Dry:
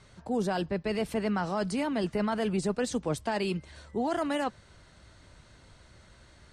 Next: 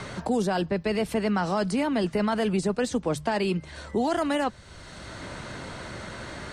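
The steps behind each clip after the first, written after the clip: hum notches 50/100/150 Hz; three bands compressed up and down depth 70%; trim +4 dB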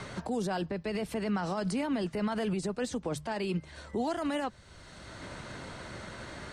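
peak limiter -23.5 dBFS, peak gain reduction 9.5 dB; upward expansion 1.5:1, over -41 dBFS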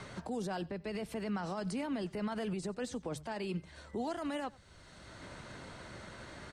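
delay 92 ms -23 dB; trim -5.5 dB

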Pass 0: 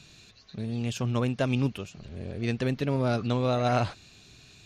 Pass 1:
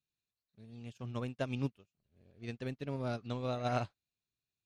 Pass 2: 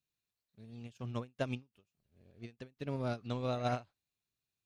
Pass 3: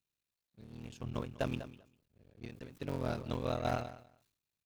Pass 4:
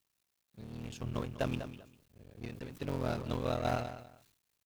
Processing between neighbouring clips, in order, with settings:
upward expansion 2.5:1, over -46 dBFS; trim -6.5 dB
endings held to a fixed fall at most 290 dB/s; trim +1 dB
cycle switcher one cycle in 3, muted; feedback delay 198 ms, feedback 16%, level -18 dB; decay stretcher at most 95 dB/s; trim +1 dB
companding laws mixed up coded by mu

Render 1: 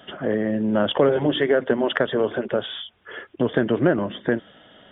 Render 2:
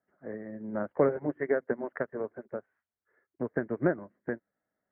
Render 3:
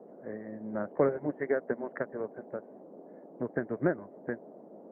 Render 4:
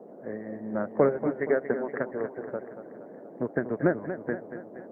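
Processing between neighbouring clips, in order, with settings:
steep low-pass 2.2 kHz 72 dB/octave; upward expansion 2.5:1, over -34 dBFS; trim -4.5 dB
band noise 190–670 Hz -49 dBFS; trim -1.5 dB
modulated delay 235 ms, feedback 55%, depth 62 cents, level -10.5 dB; trim +4 dB

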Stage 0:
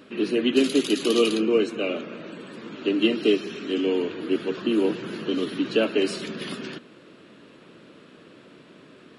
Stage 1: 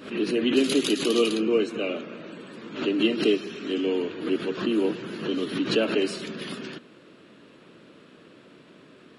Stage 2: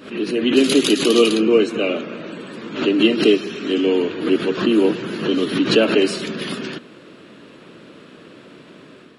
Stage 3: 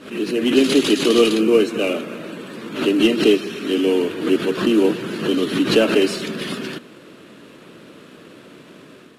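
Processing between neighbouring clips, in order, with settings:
swell ahead of each attack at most 110 dB/s; trim -2 dB
level rider gain up to 6 dB; trim +2.5 dB
CVSD coder 64 kbps

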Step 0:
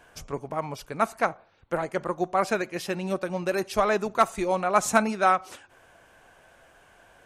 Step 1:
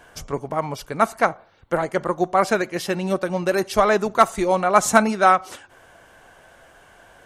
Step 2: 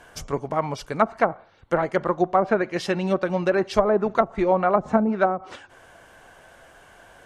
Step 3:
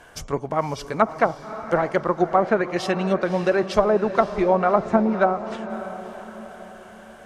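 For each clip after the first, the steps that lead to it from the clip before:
band-stop 2.5 kHz, Q 13; trim +6 dB
low-pass that closes with the level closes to 480 Hz, closed at -11.5 dBFS
echo that smears into a reverb 569 ms, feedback 46%, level -12 dB; trim +1 dB

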